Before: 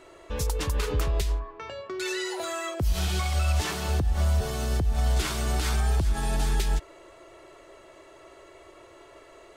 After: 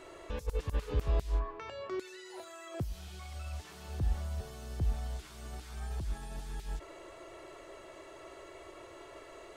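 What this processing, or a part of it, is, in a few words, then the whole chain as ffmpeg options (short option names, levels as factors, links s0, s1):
de-esser from a sidechain: -filter_complex "[0:a]asplit=2[s0][s1];[s1]highpass=4500,apad=whole_len=421806[s2];[s0][s2]sidechaincompress=threshold=0.00112:ratio=8:attack=4.4:release=21"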